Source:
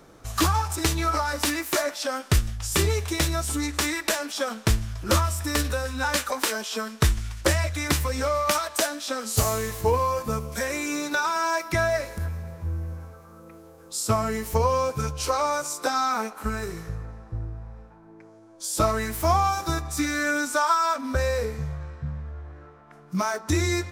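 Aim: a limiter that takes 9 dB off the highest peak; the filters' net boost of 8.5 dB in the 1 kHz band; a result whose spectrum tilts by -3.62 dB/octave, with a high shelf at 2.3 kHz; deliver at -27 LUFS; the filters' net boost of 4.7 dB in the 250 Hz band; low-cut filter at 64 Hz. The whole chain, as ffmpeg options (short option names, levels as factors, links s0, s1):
-af "highpass=64,equalizer=f=250:t=o:g=5.5,equalizer=f=1000:t=o:g=8.5,highshelf=f=2300:g=8,volume=0.501,alimiter=limit=0.178:level=0:latency=1"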